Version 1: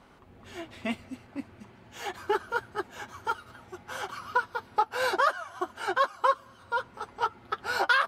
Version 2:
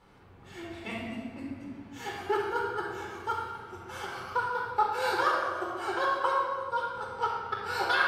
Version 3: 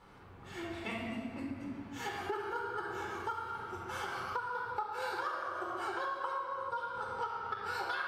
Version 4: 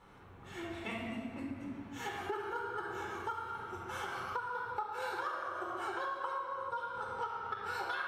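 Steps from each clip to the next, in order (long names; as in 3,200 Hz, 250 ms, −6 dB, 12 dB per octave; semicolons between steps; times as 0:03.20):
rectangular room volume 2,400 cubic metres, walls mixed, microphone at 4.2 metres; level −7 dB
parametric band 1,200 Hz +3.5 dB 0.92 octaves; downward compressor 6 to 1, threshold −35 dBFS, peak gain reduction 15.5 dB
notch filter 4,700 Hz, Q 7.5; level −1 dB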